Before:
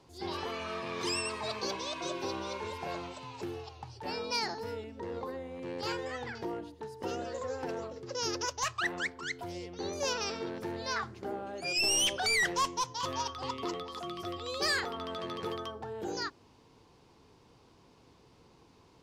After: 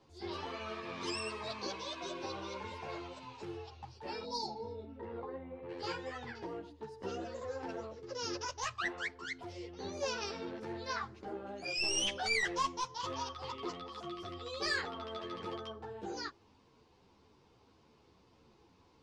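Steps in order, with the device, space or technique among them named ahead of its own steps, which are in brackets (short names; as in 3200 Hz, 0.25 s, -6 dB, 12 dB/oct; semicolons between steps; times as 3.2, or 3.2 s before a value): 4.49–5.68 LPF 3900 Hz -> 1700 Hz 12 dB/oct; 4.27–4.91 spectral repair 1000–3400 Hz after; string-machine ensemble chorus (ensemble effect; LPF 6400 Hz 12 dB/oct); gain -1.5 dB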